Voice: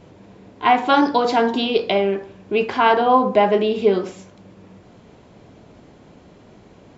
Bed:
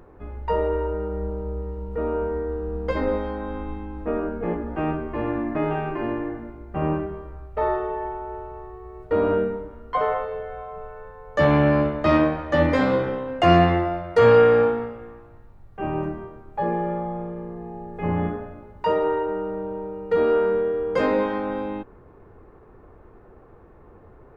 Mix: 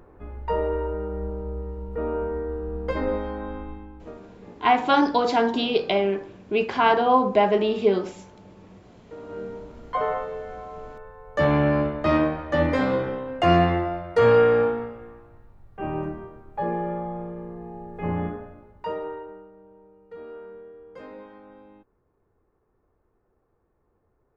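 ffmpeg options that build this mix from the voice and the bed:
ffmpeg -i stem1.wav -i stem2.wav -filter_complex "[0:a]adelay=4000,volume=-3.5dB[link_01];[1:a]volume=15.5dB,afade=type=out:start_time=3.45:duration=0.75:silence=0.125893,afade=type=in:start_time=9.27:duration=0.56:silence=0.133352,afade=type=out:start_time=18.05:duration=1.46:silence=0.11885[link_02];[link_01][link_02]amix=inputs=2:normalize=0" out.wav

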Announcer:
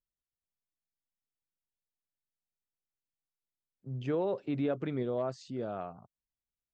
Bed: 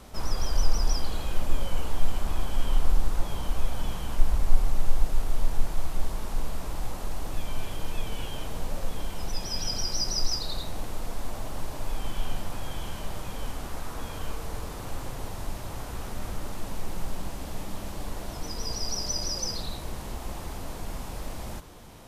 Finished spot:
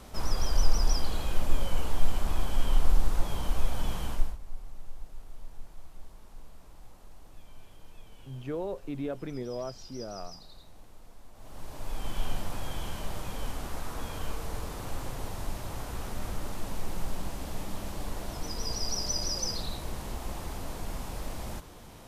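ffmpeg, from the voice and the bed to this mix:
ffmpeg -i stem1.wav -i stem2.wav -filter_complex "[0:a]adelay=4400,volume=-3dB[link_01];[1:a]volume=17.5dB,afade=type=out:start_time=4.06:duration=0.31:silence=0.11885,afade=type=in:start_time=11.34:duration=0.89:silence=0.125893[link_02];[link_01][link_02]amix=inputs=2:normalize=0" out.wav

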